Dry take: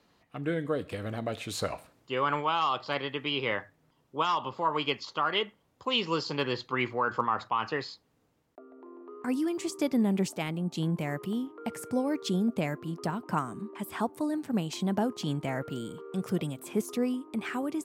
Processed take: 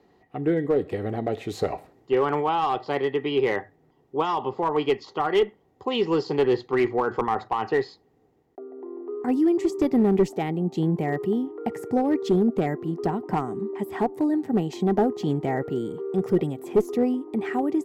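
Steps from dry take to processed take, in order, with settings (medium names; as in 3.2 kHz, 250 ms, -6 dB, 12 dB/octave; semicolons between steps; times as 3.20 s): peaking EQ 9.2 kHz -8 dB 0.24 oct; small resonant body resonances 400/760/1900 Hz, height 13 dB, ringing for 30 ms; one-sided clip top -17.5 dBFS; tilt shelf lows +4.5 dB, about 730 Hz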